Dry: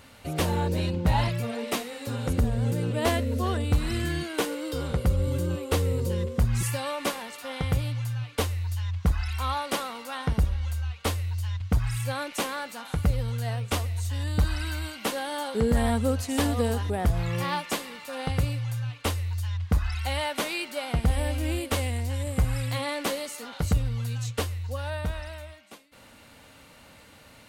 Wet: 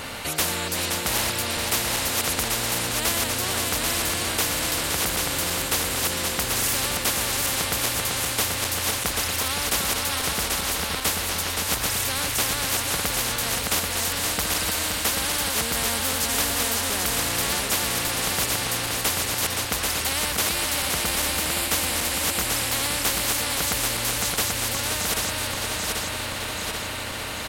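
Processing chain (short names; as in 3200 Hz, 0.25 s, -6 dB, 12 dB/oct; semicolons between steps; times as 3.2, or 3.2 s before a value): regenerating reverse delay 0.393 s, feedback 71%, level -5 dB; echo 0.521 s -11 dB; spectral compressor 4:1; gain +2 dB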